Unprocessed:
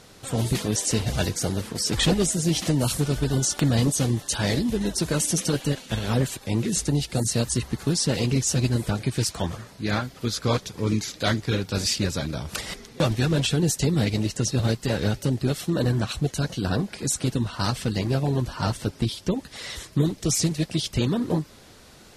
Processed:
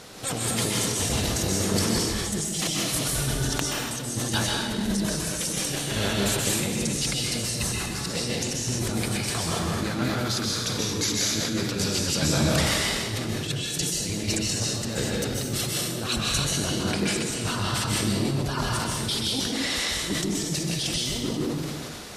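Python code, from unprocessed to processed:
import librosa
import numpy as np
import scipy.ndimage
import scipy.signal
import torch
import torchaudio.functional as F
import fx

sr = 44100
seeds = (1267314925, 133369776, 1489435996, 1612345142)

y = fx.low_shelf(x, sr, hz=120.0, db=-8.5)
y = fx.over_compress(y, sr, threshold_db=-31.0, ratio=-0.5)
y = fx.rev_plate(y, sr, seeds[0], rt60_s=1.3, hf_ratio=0.95, predelay_ms=115, drr_db=-3.0)
y = fx.sustainer(y, sr, db_per_s=25.0)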